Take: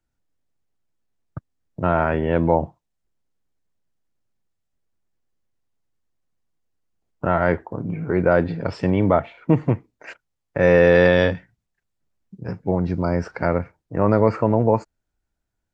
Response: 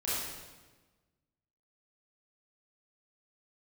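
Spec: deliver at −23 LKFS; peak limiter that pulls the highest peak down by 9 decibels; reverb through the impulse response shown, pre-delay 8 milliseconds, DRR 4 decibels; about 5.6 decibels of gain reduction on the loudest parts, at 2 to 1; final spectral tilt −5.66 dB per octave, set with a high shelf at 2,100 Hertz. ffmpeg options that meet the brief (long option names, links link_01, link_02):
-filter_complex "[0:a]highshelf=frequency=2100:gain=-3,acompressor=threshold=-20dB:ratio=2,alimiter=limit=-17dB:level=0:latency=1,asplit=2[link_01][link_02];[1:a]atrim=start_sample=2205,adelay=8[link_03];[link_02][link_03]afir=irnorm=-1:irlink=0,volume=-10.5dB[link_04];[link_01][link_04]amix=inputs=2:normalize=0,volume=5.5dB"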